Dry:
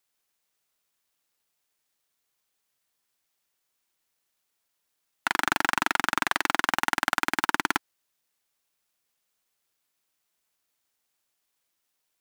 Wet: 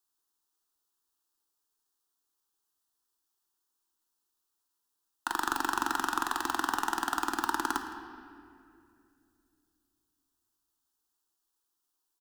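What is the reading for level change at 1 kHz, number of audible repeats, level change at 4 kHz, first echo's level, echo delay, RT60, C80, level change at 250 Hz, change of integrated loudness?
−3.0 dB, 1, −7.5 dB, −19.0 dB, 163 ms, 2.5 s, 7.5 dB, −2.5 dB, −5.5 dB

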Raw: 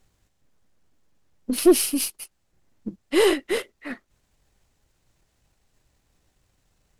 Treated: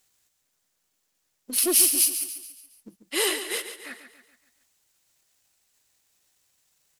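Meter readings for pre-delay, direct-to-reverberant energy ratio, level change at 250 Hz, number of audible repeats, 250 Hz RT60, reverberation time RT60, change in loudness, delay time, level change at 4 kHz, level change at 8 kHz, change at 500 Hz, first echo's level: no reverb audible, no reverb audible, −12.0 dB, 4, no reverb audible, no reverb audible, 0.0 dB, 141 ms, +2.0 dB, +7.5 dB, −11.0 dB, −10.0 dB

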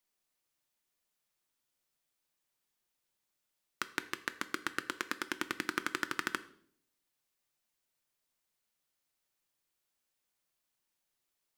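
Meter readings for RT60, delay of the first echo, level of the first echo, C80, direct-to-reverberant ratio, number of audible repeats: 0.60 s, no echo audible, no echo audible, 19.0 dB, 10.5 dB, no echo audible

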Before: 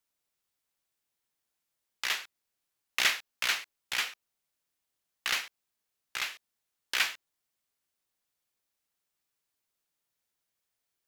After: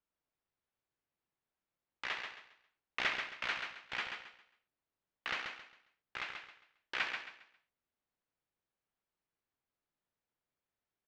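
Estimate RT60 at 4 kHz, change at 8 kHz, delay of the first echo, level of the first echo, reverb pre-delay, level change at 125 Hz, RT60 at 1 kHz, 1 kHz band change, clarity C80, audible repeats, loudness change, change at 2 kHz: no reverb audible, −21.0 dB, 135 ms, −6.0 dB, no reverb audible, can't be measured, no reverb audible, −3.0 dB, no reverb audible, 3, −8.5 dB, −6.0 dB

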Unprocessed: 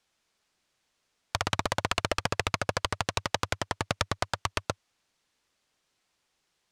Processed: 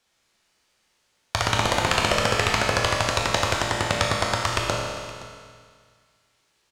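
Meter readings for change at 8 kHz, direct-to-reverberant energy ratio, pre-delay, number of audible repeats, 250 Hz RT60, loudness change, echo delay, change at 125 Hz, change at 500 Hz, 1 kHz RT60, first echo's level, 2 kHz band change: +8.0 dB, −2.5 dB, 7 ms, 1, 1.9 s, +8.0 dB, 519 ms, +8.0 dB, +9.0 dB, 2.0 s, −18.5 dB, +8.5 dB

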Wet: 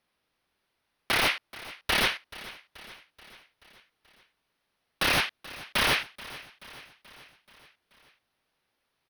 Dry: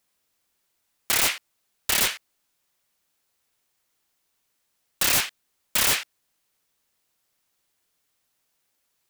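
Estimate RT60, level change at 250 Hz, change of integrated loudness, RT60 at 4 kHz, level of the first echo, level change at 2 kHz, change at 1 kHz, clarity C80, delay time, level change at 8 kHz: no reverb audible, +2.5 dB, −4.0 dB, no reverb audible, −18.0 dB, +1.5 dB, +2.5 dB, no reverb audible, 431 ms, −13.0 dB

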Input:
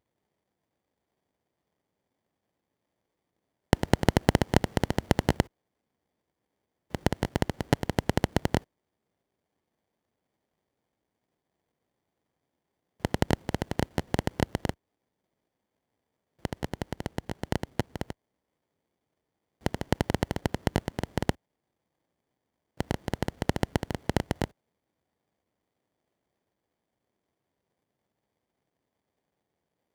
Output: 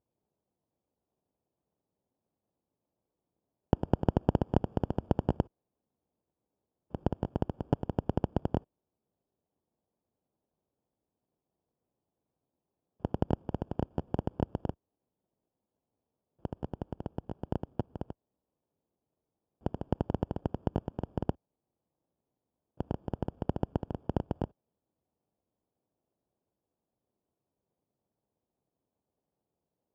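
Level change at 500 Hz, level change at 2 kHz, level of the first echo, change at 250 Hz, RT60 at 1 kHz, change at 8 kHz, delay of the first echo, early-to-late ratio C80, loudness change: −4.5 dB, −19.0 dB, no echo audible, −3.5 dB, no reverb audible, below −25 dB, no echo audible, no reverb audible, −4.5 dB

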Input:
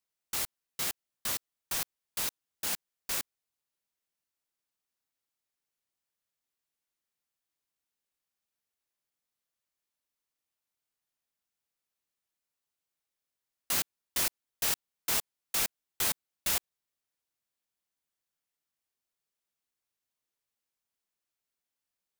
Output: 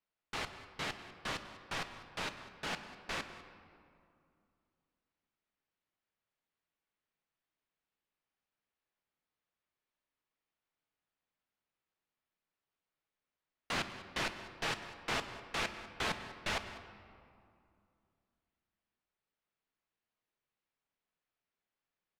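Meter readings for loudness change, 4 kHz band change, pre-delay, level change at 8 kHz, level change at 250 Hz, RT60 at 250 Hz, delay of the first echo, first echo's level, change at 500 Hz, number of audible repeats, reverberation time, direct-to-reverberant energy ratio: −7.5 dB, −4.0 dB, 5 ms, −16.0 dB, +3.0 dB, 3.0 s, 198 ms, −17.0 dB, +3.0 dB, 1, 2.5 s, 7.5 dB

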